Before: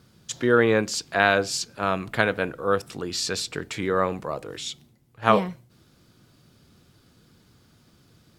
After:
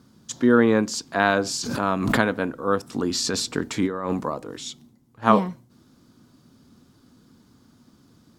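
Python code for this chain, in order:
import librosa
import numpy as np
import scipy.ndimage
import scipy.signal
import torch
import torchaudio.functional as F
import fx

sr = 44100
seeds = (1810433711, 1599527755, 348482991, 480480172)

y = fx.over_compress(x, sr, threshold_db=-28.0, ratio=-1.0, at=(2.93, 4.28), fade=0.02)
y = fx.graphic_eq_15(y, sr, hz=(250, 1000, 2500, 6300), db=(12, 6, -4, 3))
y = fx.pre_swell(y, sr, db_per_s=37.0, at=(1.29, 2.27))
y = y * 10.0 ** (-2.5 / 20.0)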